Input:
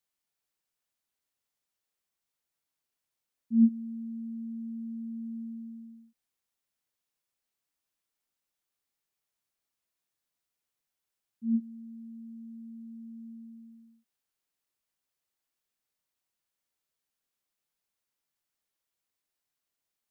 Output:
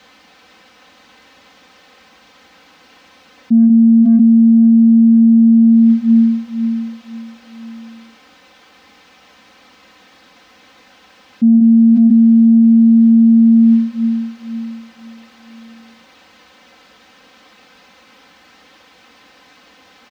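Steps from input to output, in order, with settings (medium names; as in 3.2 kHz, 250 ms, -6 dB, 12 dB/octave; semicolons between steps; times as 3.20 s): distance through air 230 m; in parallel at -11 dB: saturation -24 dBFS, distortion -8 dB; on the sum: high-pass 88 Hz; comb 3.9 ms, depth 93%; on a send: feedback delay 511 ms, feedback 34%, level -11 dB; on the sum: level flattener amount 100%; trim +3.5 dB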